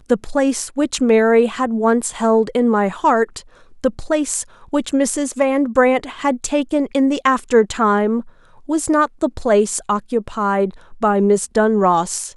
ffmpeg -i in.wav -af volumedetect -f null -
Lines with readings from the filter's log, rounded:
mean_volume: -17.4 dB
max_volume: -1.1 dB